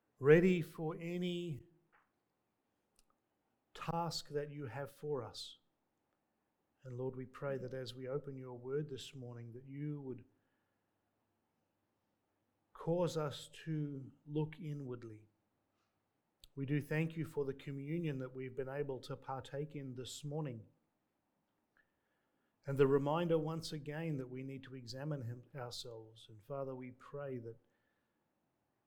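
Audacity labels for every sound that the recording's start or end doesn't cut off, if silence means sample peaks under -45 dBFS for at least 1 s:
3.750000	5.480000	sound
6.860000	10.160000	sound
12.760000	15.130000	sound
16.440000	20.590000	sound
22.680000	27.520000	sound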